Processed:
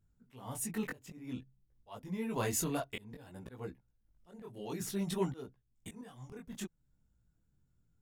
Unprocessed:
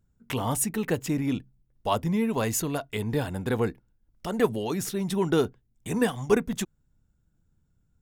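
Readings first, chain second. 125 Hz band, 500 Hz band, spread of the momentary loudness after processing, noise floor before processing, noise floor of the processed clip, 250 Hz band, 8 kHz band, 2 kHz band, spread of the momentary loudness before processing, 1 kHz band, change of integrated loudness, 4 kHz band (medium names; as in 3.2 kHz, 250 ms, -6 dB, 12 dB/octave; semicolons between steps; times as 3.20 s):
-12.5 dB, -14.5 dB, 18 LU, -70 dBFS, -76 dBFS, -12.5 dB, -8.5 dB, -12.0 dB, 9 LU, -13.0 dB, -11.5 dB, -11.5 dB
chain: slow attack 628 ms; chorus voices 2, 0.55 Hz, delay 20 ms, depth 4.7 ms; trim -2.5 dB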